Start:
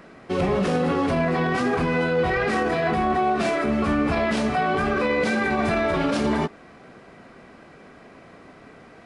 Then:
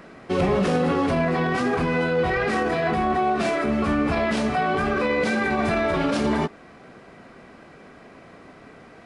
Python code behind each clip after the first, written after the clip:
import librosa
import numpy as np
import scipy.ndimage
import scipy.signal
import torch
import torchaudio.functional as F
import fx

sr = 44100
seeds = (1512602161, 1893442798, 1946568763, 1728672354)

y = fx.rider(x, sr, range_db=3, speed_s=2.0)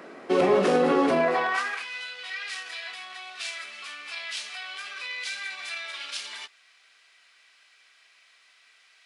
y = fx.filter_sweep_highpass(x, sr, from_hz=330.0, to_hz=3200.0, start_s=1.17, end_s=1.9, q=1.2)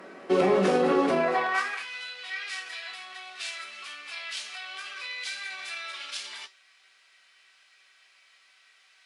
y = fx.comb_fb(x, sr, f0_hz=190.0, decay_s=0.29, harmonics='all', damping=0.0, mix_pct=70)
y = fx.cheby_harmonics(y, sr, harmonics=(2,), levels_db=(-35,), full_scale_db=-18.0)
y = F.gain(torch.from_numpy(y), 6.5).numpy()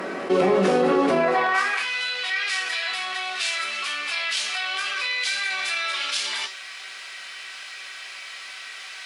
y = fx.env_flatten(x, sr, amount_pct=50)
y = F.gain(torch.from_numpy(y), 2.0).numpy()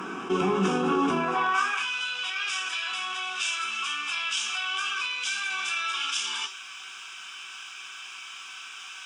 y = fx.fixed_phaser(x, sr, hz=2900.0, stages=8)